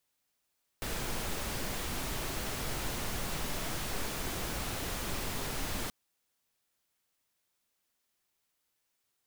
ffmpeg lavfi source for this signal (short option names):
-f lavfi -i "anoisesrc=c=pink:a=0.0861:d=5.08:r=44100:seed=1"